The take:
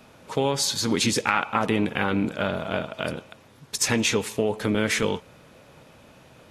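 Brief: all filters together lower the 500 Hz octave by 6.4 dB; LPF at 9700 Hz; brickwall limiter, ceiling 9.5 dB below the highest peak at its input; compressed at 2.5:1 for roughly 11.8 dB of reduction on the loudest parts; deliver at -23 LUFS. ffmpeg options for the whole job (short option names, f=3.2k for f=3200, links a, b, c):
-af "lowpass=9.7k,equalizer=f=500:t=o:g=-8,acompressor=threshold=-38dB:ratio=2.5,volume=15.5dB,alimiter=limit=-10.5dB:level=0:latency=1"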